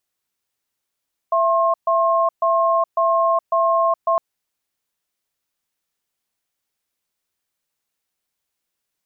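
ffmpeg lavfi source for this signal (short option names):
-f lavfi -i "aevalsrc='0.141*(sin(2*PI*667*t)+sin(2*PI*1070*t))*clip(min(mod(t,0.55),0.42-mod(t,0.55))/0.005,0,1)':d=2.86:s=44100"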